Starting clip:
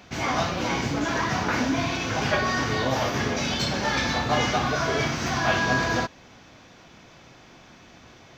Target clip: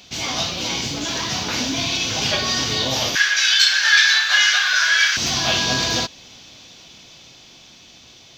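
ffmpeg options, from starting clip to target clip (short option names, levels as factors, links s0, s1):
-filter_complex "[0:a]asettb=1/sr,asplit=3[s0][s1][s2];[s0]atrim=end=3.154[s3];[s1]atrim=start=3.15:end=5.17,asetpts=PTS-STARTPTS,afade=t=in:d=0.004:c=qsin,afade=t=out:st=2.016:d=0.004:c=qsin,highpass=f=1600:t=q:w=15[s4];[s2]atrim=start=5.166[s5];[s3][s4]acrossfade=d=0.004:c1=hsin:c2=qsin[s6];[s6][s5]acrossfade=d=0.004:c1=qsin:c2=hsin,dynaudnorm=f=290:g=13:m=3.76,highshelf=f=2400:t=q:w=1.5:g=11.5,volume=0.75"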